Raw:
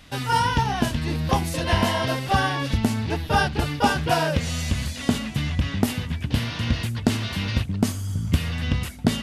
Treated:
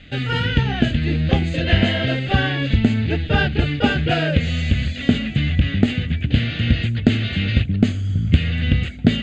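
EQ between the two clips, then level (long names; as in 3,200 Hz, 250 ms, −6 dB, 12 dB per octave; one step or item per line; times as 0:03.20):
Butterworth low-pass 6,700 Hz 48 dB per octave
phaser with its sweep stopped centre 2,400 Hz, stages 4
+6.5 dB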